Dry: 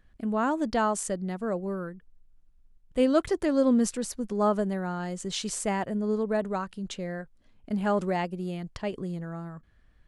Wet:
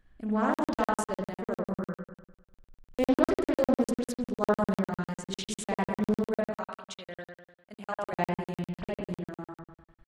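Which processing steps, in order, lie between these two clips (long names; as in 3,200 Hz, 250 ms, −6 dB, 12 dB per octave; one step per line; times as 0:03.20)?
0:06.45–0:08.13: high-pass filter 1,100 Hz 6 dB per octave
spring reverb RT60 1 s, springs 57 ms, chirp 20 ms, DRR −2 dB
regular buffer underruns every 0.10 s, samples 2,048, zero, from 0:00.54
highs frequency-modulated by the lows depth 0.34 ms
level −4 dB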